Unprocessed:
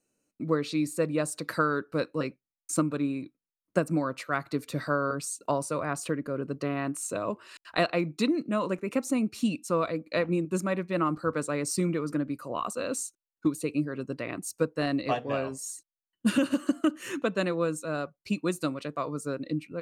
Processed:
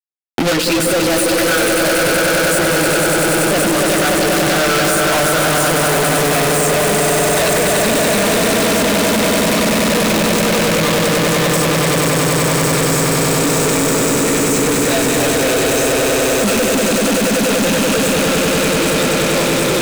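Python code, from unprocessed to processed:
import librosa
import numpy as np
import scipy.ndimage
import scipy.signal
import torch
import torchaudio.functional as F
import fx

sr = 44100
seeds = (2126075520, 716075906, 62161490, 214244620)

y = fx.spec_quant(x, sr, step_db=15)
y = fx.doppler_pass(y, sr, speed_mps=24, closest_m=23.0, pass_at_s=6.41)
y = fx.peak_eq(y, sr, hz=290.0, db=-5.0, octaves=0.41)
y = y + 10.0 ** (-21.0 / 20.0) * np.pad(y, (int(799 * sr / 1000.0), 0))[:len(y)]
y = fx.chorus_voices(y, sr, voices=4, hz=0.38, base_ms=16, depth_ms=2.6, mix_pct=55)
y = fx.echo_swell(y, sr, ms=96, loudest=8, wet_db=-5.5)
y = fx.fuzz(y, sr, gain_db=52.0, gate_db=-57.0)
y = fx.highpass(y, sr, hz=160.0, slope=6)
y = fx.peak_eq(y, sr, hz=1100.0, db=-14.5, octaves=0.27)
y = fx.leveller(y, sr, passes=5)
y = fx.band_squash(y, sr, depth_pct=70)
y = y * librosa.db_to_amplitude(-5.5)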